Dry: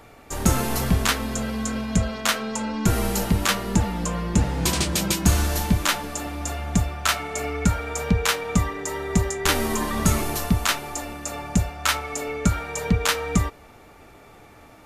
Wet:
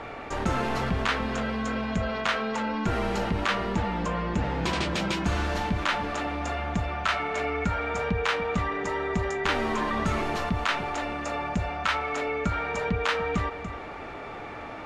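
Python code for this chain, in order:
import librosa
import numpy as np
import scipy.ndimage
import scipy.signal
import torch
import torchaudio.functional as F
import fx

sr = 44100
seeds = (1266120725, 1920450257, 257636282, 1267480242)

y = scipy.signal.sosfilt(scipy.signal.butter(2, 2800.0, 'lowpass', fs=sr, output='sos'), x)
y = fx.low_shelf(y, sr, hz=280.0, db=-8.5)
y = y + 10.0 ** (-18.0 / 20.0) * np.pad(y, (int(290 * sr / 1000.0), 0))[:len(y)]
y = fx.env_flatten(y, sr, amount_pct=50)
y = F.gain(torch.from_numpy(y), -3.0).numpy()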